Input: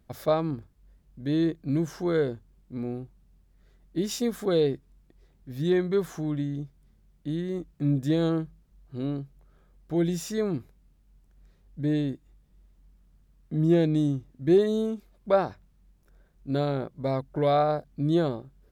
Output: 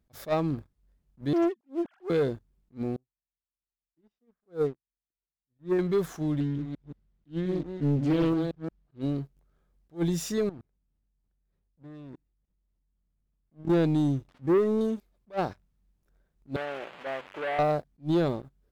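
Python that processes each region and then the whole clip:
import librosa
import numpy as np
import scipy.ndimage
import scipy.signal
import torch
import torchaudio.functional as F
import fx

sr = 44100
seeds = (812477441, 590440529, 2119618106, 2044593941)

y = fx.chain(x, sr, fx.sine_speech(),
    fx.doppler_dist(depth_ms=0.43), at=(1.33, 2.1))
y = fx.chain(y, sr, fx.lowpass(hz=1700.0, slope=12),
    fx.upward_expand(threshold_db=-42.0, expansion=2.5), at=(2.96, 5.79))
y = fx.chain(y, sr, fx.reverse_delay(ms=176, wet_db=-8.0),
    fx.lowpass(hz=4300.0, slope=12),
    fx.doppler_dist(depth_ms=0.47), at=(6.4, 9.01))
y = fx.chain(y, sr, fx.high_shelf(hz=3500.0, db=-11.5),
    fx.level_steps(step_db=22), at=(10.49, 13.7))
y = fx.chain(y, sr, fx.crossing_spikes(level_db=-26.0),
    fx.lowpass(hz=1600.0, slope=12), at=(14.28, 14.81))
y = fx.chain(y, sr, fx.delta_mod(bps=16000, step_db=-34.0),
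    fx.highpass(hz=590.0, slope=12),
    fx.transformer_sat(knee_hz=1400.0), at=(16.56, 17.59))
y = fx.leveller(y, sr, passes=2)
y = fx.attack_slew(y, sr, db_per_s=330.0)
y = F.gain(torch.from_numpy(y), -6.0).numpy()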